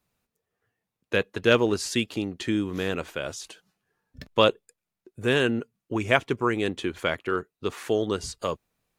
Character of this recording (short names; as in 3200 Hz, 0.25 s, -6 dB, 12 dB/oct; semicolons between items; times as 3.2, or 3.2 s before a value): noise floor -87 dBFS; spectral tilt -3.5 dB/oct